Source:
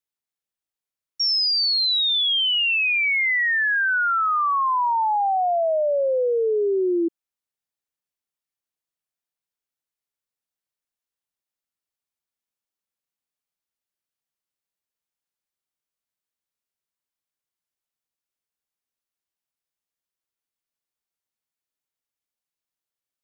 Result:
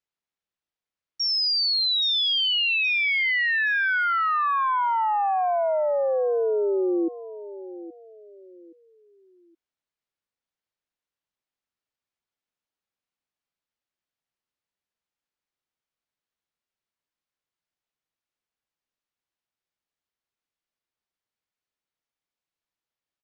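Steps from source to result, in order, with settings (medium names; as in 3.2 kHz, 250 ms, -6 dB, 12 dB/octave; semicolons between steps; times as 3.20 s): Bessel low-pass 4.1 kHz; peak limiter -22 dBFS, peak gain reduction 4 dB; feedback delay 822 ms, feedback 32%, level -15 dB; trim +2 dB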